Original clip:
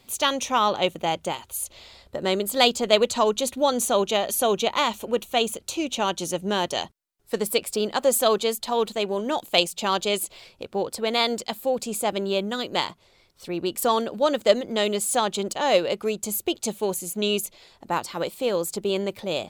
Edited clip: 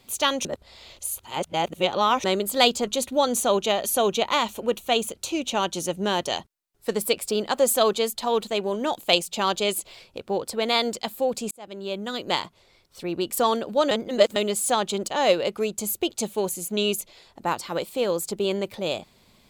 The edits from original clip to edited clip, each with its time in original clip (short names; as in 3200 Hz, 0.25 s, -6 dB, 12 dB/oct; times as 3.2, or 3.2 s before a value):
0.45–2.24 reverse
2.87–3.32 cut
11.96–12.75 fade in
14.36–14.81 reverse